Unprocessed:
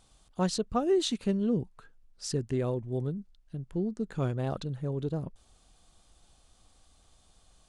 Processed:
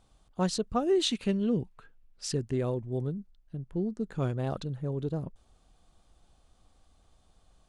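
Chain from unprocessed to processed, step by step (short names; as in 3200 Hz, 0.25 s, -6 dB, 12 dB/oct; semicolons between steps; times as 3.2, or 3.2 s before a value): 0.95–2.35 bell 2600 Hz +6.5 dB 1.1 oct; mismatched tape noise reduction decoder only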